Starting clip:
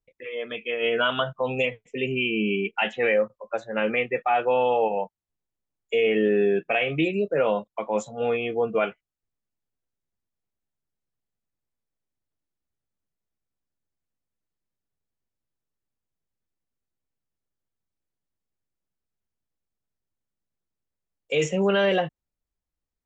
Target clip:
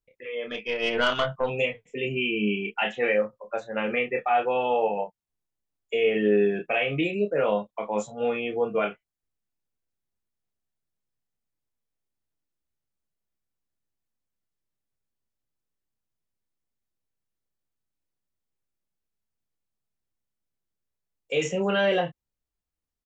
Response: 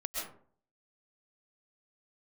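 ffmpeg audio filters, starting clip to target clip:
-filter_complex "[0:a]asplit=2[s0][s1];[s1]adelay=29,volume=0.562[s2];[s0][s2]amix=inputs=2:normalize=0,asettb=1/sr,asplit=3[s3][s4][s5];[s3]atrim=end=0.474[s6];[s4]atrim=start=0.47:end=1.5,asetpts=PTS-STARTPTS,afade=t=in:d=0.004:c=qsin,afade=t=out:st=1.026:d=0.004:c=qsin,aeval=exprs='0.335*(cos(1*acos(clip(val(0)/0.335,-1,1)))-cos(1*PI/2))+0.0422*(cos(4*acos(clip(val(0)/0.335,-1,1)))-cos(4*PI/2))+0.00841*(cos(5*acos(clip(val(0)/0.335,-1,1)))-cos(5*PI/2))':c=same[s7];[s5]atrim=start=1.496[s8];[s6][s7]acrossfade=d=0.004:c1=hsin:c2=qsin[s9];[s9][s8]acrossfade=d=0.004:c1=qsin:c2=hsin,volume=0.75"

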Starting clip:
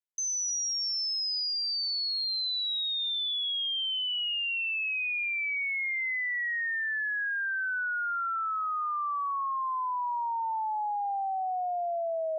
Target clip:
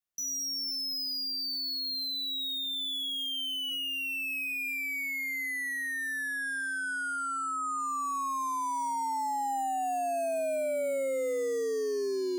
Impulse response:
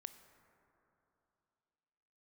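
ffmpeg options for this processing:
-af "adynamicequalizer=threshold=0.00708:dfrequency=830:dqfactor=2:tfrequency=830:tqfactor=2:attack=5:release=100:ratio=0.375:range=2.5:mode=boostabove:tftype=bell,aeval=exprs='0.0422*(cos(1*acos(clip(val(0)/0.0422,-1,1)))-cos(1*PI/2))+0.00668*(cos(5*acos(clip(val(0)/0.0422,-1,1)))-cos(5*PI/2))+0.00376*(cos(6*acos(clip(val(0)/0.0422,-1,1)))-cos(6*PI/2))':c=same,afreqshift=-270,volume=0.75"

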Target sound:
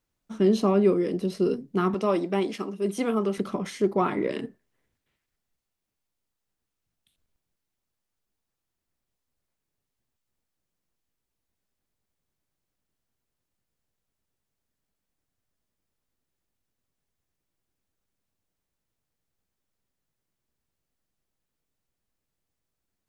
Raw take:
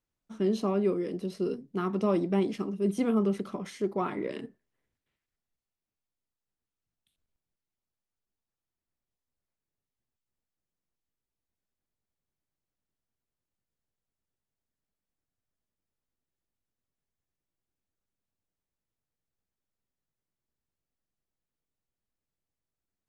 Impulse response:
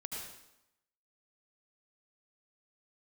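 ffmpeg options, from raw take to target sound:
-filter_complex "[0:a]asettb=1/sr,asplit=3[s0][s1][s2];[s0]atrim=end=1.944[s3];[s1]atrim=start=1.94:end=3.38,asetpts=PTS-STARTPTS,afade=t=in:d=0.004:c=qsin,afade=t=out:st=1.436:d=0.004:c=qsin,highpass=f=510:p=1[s4];[s2]atrim=start=3.376[s5];[s3][s4]acrossfade=d=0.004:c1=hsin:c2=qsin[s6];[s6][s5]acrossfade=d=0.004:c1=qsin:c2=hsin,volume=2.11"

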